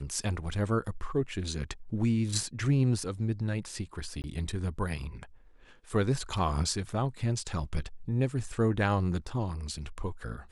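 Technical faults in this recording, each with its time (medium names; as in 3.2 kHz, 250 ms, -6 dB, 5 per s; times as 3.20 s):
4.22–4.24 s: dropout 19 ms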